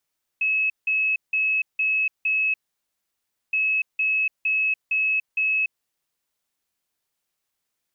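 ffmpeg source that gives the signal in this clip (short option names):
-f lavfi -i "aevalsrc='0.112*sin(2*PI*2580*t)*clip(min(mod(mod(t,3.12),0.46),0.29-mod(mod(t,3.12),0.46))/0.005,0,1)*lt(mod(t,3.12),2.3)':d=6.24:s=44100"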